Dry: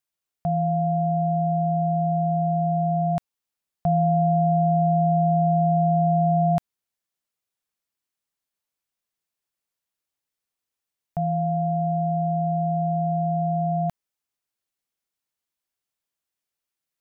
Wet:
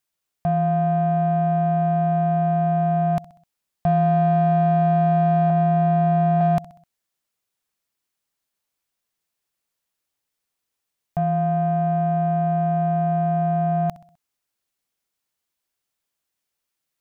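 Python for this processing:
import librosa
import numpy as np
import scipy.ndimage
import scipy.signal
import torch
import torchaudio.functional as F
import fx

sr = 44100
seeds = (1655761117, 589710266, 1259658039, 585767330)

p1 = fx.lowpass(x, sr, hz=1000.0, slope=12, at=(5.5, 6.41))
p2 = fx.echo_feedback(p1, sr, ms=64, feedback_pct=48, wet_db=-20.5)
p3 = 10.0 ** (-25.5 / 20.0) * np.tanh(p2 / 10.0 ** (-25.5 / 20.0))
y = p2 + F.gain(torch.from_numpy(p3), -2.0).numpy()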